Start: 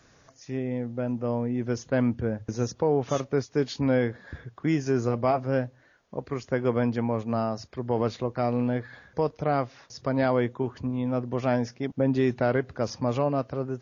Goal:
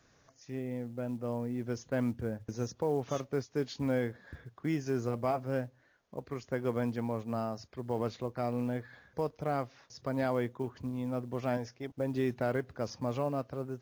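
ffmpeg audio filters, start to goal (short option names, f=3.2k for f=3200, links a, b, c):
-filter_complex "[0:a]asettb=1/sr,asplit=3[a][b][c];[a]atrim=end=11.574[d];[b]atrim=start=11.57:end=12.14,asetpts=PTS-STARTPTS,afade=t=in:d=0.004:c=qsin,afade=t=out:st=0.566:d=0.004:c=qsin,equalizer=f=200:w=2.4:g=-12[e];[c]atrim=start=12.136[f];[d][e]acrossfade=d=0.004:c1=hsin:c2=qsin[g];[g][f]acrossfade=d=0.004:c1=qsin:c2=hsin,acrusher=bits=8:mode=log:mix=0:aa=0.000001,volume=-7.5dB"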